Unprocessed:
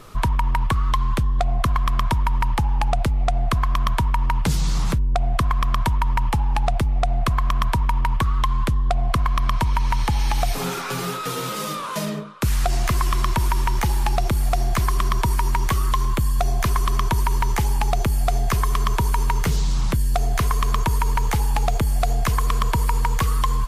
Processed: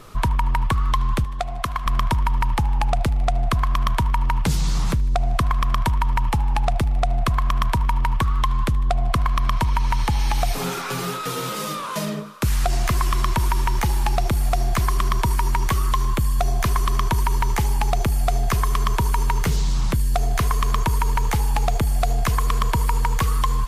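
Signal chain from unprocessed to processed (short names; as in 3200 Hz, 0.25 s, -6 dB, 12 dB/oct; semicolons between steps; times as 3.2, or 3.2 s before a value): 1.24–1.86 low shelf 400 Hz -9 dB; thinning echo 77 ms, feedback 83%, high-pass 430 Hz, level -22 dB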